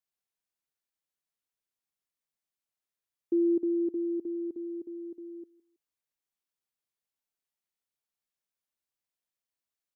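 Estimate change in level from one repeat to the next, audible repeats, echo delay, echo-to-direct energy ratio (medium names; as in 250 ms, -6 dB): -10.5 dB, 2, 162 ms, -20.5 dB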